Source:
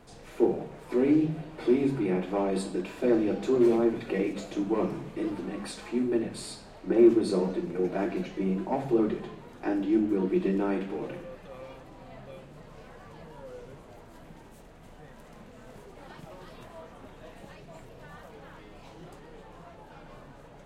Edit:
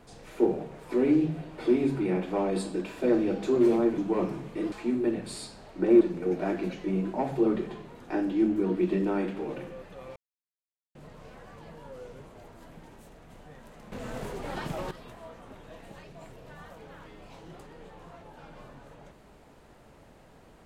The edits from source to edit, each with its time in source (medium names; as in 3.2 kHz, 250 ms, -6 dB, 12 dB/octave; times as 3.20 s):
3.98–4.59 s: delete
5.33–5.80 s: delete
7.09–7.54 s: delete
11.69–12.48 s: mute
15.45–16.44 s: gain +11.5 dB